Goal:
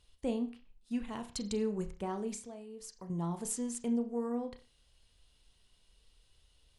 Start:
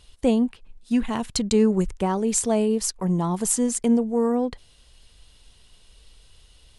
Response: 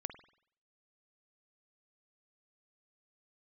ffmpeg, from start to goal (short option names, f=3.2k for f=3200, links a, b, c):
-filter_complex "[0:a]asettb=1/sr,asplit=3[a][b][c];[a]atrim=end=2.344[d];[b]atrim=start=2.34:end=3.1,asetpts=PTS-STARTPTS,afade=t=in:d=0.004:c=qsin,afade=t=out:st=0.756:d=0.004:c=qsin,acompressor=threshold=-30dB:ratio=6[e];[c]atrim=start=3.096[f];[d][e]acrossfade=d=0.004:c1=hsin:c2=qsin[g];[g][f]acrossfade=d=0.004:c1=qsin:c2=hsin[h];[1:a]atrim=start_sample=2205,afade=t=out:st=0.36:d=0.01,atrim=end_sample=16317,asetrate=70560,aresample=44100[i];[h][i]afir=irnorm=-1:irlink=0,volume=-7.5dB"